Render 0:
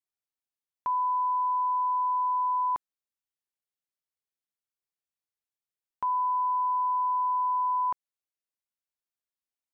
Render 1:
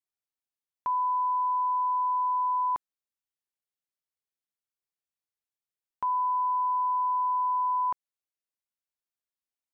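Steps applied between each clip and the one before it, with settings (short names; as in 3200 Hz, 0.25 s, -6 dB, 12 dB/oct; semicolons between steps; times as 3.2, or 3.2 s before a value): nothing audible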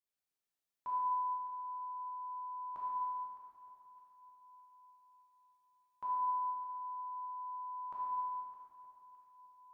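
limiter -32.5 dBFS, peak gain reduction 9 dB; on a send: echo with dull and thin repeats by turns 0.306 s, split 1000 Hz, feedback 67%, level -12.5 dB; on the sum: plate-style reverb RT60 2.6 s, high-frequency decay 0.85×, DRR -6.5 dB; gain -6 dB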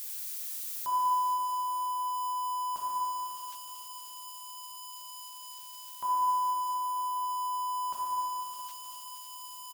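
switching spikes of -39.5 dBFS; feedback echo 0.467 s, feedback 49%, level -14 dB; gain +7 dB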